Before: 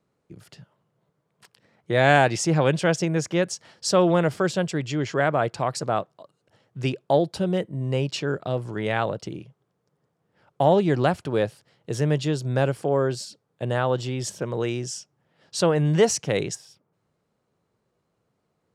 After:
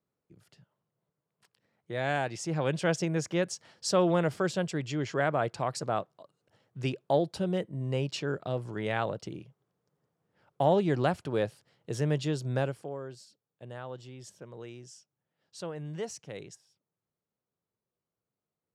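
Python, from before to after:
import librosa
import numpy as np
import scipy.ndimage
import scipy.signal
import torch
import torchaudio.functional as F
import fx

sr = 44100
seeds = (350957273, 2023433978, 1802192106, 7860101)

y = fx.gain(x, sr, db=fx.line((2.34, -13.0), (2.89, -6.0), (12.56, -6.0), (12.99, -18.0)))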